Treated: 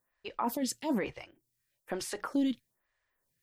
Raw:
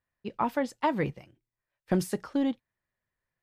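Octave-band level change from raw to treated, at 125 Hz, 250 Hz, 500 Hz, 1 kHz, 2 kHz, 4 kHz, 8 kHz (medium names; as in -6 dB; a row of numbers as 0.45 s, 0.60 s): -13.5 dB, -2.5 dB, -6.0 dB, -6.0 dB, -4.5 dB, +2.5 dB, +5.0 dB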